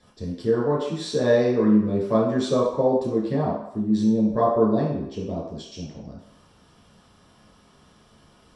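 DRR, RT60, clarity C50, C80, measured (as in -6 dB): -6.5 dB, 0.75 s, 2.5 dB, 5.5 dB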